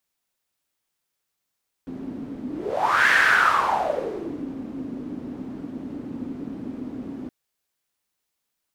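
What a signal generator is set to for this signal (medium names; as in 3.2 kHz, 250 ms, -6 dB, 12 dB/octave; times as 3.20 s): whoosh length 5.42 s, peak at 1.25 s, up 0.68 s, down 1.48 s, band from 260 Hz, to 1.7 kHz, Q 6.5, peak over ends 16.5 dB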